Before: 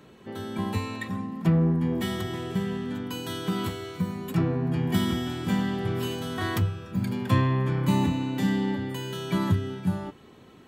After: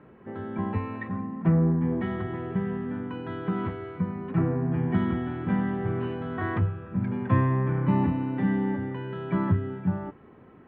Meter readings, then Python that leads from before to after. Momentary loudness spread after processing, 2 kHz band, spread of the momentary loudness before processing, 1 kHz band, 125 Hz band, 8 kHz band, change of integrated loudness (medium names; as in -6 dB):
9 LU, -2.0 dB, 9 LU, 0.0 dB, 0.0 dB, under -35 dB, 0.0 dB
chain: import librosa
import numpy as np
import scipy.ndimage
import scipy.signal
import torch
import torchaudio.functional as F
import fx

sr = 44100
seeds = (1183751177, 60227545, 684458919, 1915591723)

y = scipy.signal.sosfilt(scipy.signal.cheby2(4, 80, 10000.0, 'lowpass', fs=sr, output='sos'), x)